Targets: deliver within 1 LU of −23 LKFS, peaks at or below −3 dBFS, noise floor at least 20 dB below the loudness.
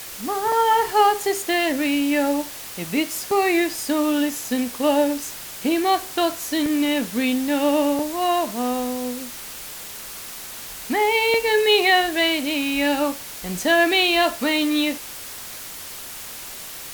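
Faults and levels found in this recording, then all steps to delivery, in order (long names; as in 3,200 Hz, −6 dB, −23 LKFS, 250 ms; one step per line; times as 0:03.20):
number of dropouts 5; longest dropout 2.5 ms; background noise floor −36 dBFS; target noise floor −41 dBFS; integrated loudness −21.0 LKFS; sample peak −5.0 dBFS; target loudness −23.0 LKFS
→ repair the gap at 0:00.52/0:03.31/0:06.66/0:07.99/0:11.34, 2.5 ms
broadband denoise 6 dB, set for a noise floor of −36 dBFS
level −2 dB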